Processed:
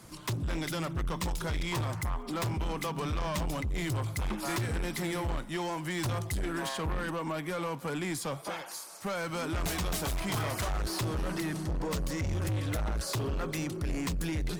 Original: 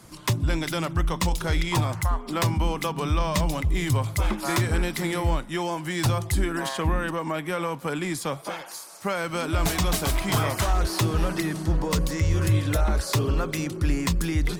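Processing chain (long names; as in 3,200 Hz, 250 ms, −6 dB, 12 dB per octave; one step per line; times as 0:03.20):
surface crackle 230 per second −49 dBFS
soft clipping −26 dBFS, distortion −9 dB
level −2.5 dB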